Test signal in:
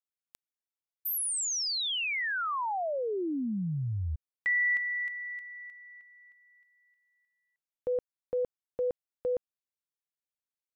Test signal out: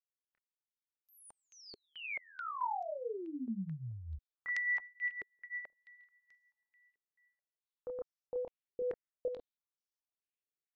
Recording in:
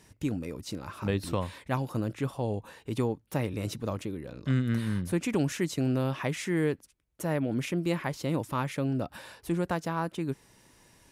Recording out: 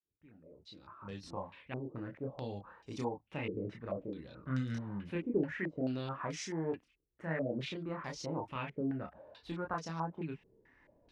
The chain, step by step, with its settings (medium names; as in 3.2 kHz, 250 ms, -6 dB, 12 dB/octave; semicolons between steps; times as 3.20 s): fade-in on the opening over 2.44 s; chorus voices 6, 0.18 Hz, delay 28 ms, depth 3.5 ms; step-sequenced low-pass 4.6 Hz 410–5700 Hz; trim -7 dB